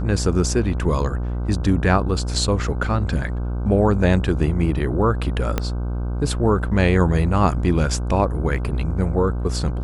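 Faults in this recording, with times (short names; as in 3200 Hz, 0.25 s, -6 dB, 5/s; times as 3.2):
buzz 60 Hz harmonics 26 -24 dBFS
5.58 pop -7 dBFS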